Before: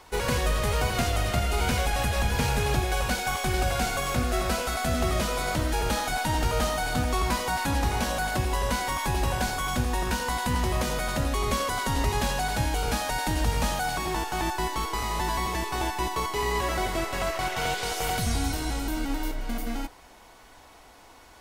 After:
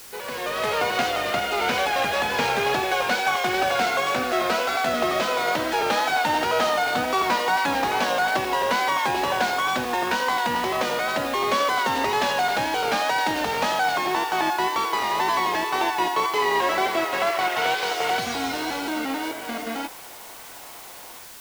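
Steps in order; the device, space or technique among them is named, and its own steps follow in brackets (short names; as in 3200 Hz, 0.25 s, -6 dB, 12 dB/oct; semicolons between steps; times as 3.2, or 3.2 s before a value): dictaphone (BPF 360–4200 Hz; AGC gain up to 14 dB; wow and flutter; white noise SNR 19 dB); gain -6 dB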